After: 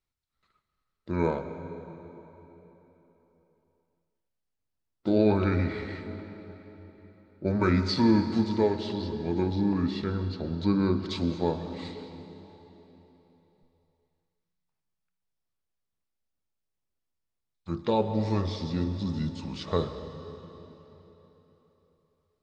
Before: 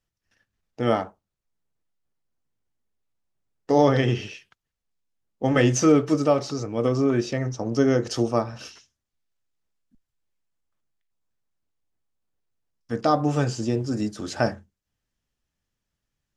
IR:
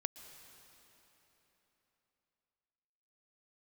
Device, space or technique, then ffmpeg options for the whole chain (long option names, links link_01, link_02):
slowed and reverbed: -filter_complex "[0:a]asetrate=32193,aresample=44100[link_01];[1:a]atrim=start_sample=2205[link_02];[link_01][link_02]afir=irnorm=-1:irlink=0,volume=-3.5dB"